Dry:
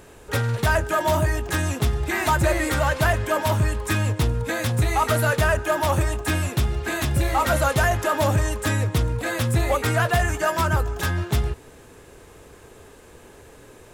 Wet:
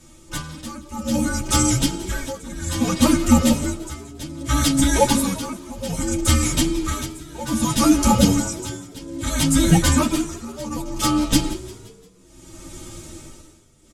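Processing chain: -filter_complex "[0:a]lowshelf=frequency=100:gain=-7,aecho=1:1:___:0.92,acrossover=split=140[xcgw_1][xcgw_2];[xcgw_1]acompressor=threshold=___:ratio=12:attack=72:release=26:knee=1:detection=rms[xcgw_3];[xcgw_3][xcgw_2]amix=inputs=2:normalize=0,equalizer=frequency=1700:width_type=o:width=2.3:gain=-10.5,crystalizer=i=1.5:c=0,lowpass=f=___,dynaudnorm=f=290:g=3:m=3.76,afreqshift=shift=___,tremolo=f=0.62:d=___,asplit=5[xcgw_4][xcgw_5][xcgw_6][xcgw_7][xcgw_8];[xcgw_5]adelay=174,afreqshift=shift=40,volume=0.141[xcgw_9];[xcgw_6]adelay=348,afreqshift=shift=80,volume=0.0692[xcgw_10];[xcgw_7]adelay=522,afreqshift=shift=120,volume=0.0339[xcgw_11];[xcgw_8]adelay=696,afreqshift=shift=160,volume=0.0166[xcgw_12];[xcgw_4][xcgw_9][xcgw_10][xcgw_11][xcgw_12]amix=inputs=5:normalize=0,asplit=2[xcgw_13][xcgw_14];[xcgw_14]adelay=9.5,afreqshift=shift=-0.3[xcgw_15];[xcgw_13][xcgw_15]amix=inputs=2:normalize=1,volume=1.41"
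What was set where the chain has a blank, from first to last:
3.1, 0.0158, 7200, -390, 0.92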